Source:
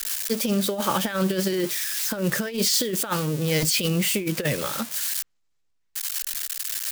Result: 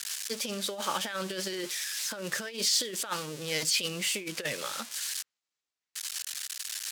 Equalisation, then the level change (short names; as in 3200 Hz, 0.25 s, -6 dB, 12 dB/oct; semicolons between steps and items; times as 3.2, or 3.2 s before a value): HPF 600 Hz 6 dB/oct; air absorption 52 m; high shelf 3100 Hz +7.5 dB; -6.0 dB